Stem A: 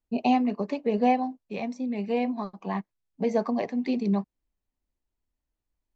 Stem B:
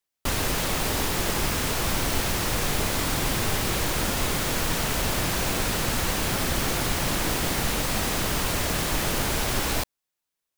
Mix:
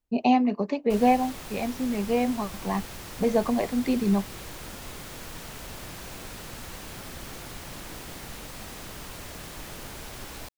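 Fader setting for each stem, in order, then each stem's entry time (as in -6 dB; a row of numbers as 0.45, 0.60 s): +2.0, -14.5 dB; 0.00, 0.65 s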